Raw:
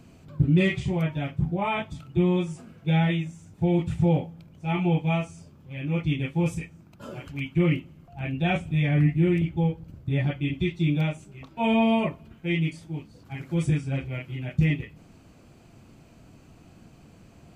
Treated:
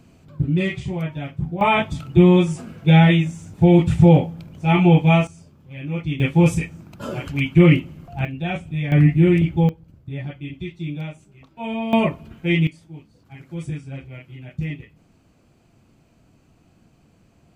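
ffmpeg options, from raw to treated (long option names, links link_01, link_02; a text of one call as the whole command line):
ffmpeg -i in.wav -af "asetnsamples=nb_out_samples=441:pad=0,asendcmd='1.61 volume volume 10dB;5.27 volume volume 0.5dB;6.2 volume volume 10dB;8.25 volume volume -1dB;8.92 volume volume 7dB;9.69 volume volume -5dB;11.93 volume volume 7dB;12.67 volume volume -5dB',volume=0dB" out.wav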